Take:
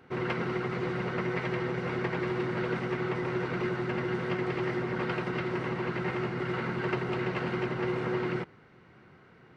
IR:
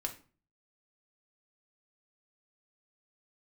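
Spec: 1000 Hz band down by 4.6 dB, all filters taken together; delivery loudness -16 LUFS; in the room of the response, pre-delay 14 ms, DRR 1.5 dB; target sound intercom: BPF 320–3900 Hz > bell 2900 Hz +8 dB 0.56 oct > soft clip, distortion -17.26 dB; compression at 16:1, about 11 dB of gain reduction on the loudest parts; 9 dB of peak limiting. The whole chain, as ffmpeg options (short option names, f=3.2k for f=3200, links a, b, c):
-filter_complex "[0:a]equalizer=f=1k:t=o:g=-6.5,acompressor=threshold=-38dB:ratio=16,alimiter=level_in=13.5dB:limit=-24dB:level=0:latency=1,volume=-13.5dB,asplit=2[a][b];[1:a]atrim=start_sample=2205,adelay=14[c];[b][c]afir=irnorm=-1:irlink=0,volume=-2dB[d];[a][d]amix=inputs=2:normalize=0,highpass=320,lowpass=3.9k,equalizer=f=2.9k:t=o:w=0.56:g=8,asoftclip=threshold=-39.5dB,volume=30dB"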